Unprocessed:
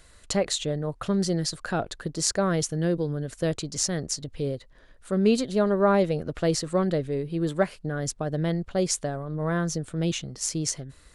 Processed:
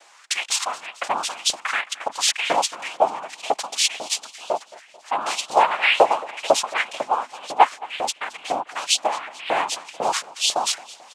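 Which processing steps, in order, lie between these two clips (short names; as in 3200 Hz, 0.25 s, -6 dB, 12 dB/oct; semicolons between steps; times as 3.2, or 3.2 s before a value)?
noise vocoder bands 4; LFO high-pass saw up 2 Hz 570–3600 Hz; feedback echo 0.22 s, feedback 58%, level -20.5 dB; gain +6 dB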